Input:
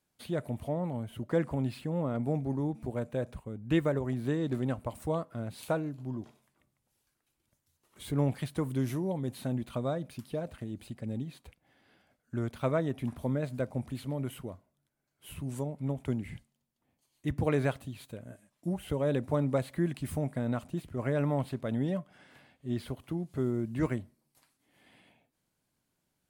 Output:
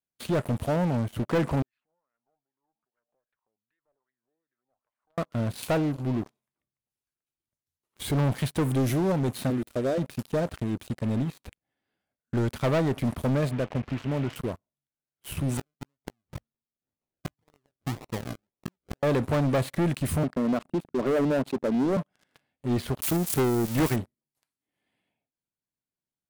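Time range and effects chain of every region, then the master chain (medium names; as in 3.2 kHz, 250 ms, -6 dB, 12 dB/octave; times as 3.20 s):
1.62–5.18 s: compression 8:1, threshold -43 dBFS + wah-wah 2.5 Hz 710–1800 Hz, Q 4.4 + valve stage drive 51 dB, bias 0.5
9.50–9.98 s: high-pass 54 Hz 6 dB/octave + peaking EQ 3.1 kHz -9 dB 1 oct + static phaser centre 400 Hz, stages 4
13.51–14.36 s: CVSD coder 16 kbps + compression 2:1, threshold -35 dBFS
15.57–19.03 s: inverted gate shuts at -29 dBFS, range -31 dB + decimation with a swept rate 38×, swing 60% 1.9 Hz + doubling 18 ms -13 dB
20.23–21.97 s: resonances exaggerated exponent 2 + high-pass 180 Hz 24 dB/octave
23.02–23.96 s: zero-crossing glitches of -25 dBFS + transient shaper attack +11 dB, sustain -6 dB
whole clip: peaking EQ 400 Hz +2.5 dB 0.21 oct; waveshaping leveller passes 5; trim -7.5 dB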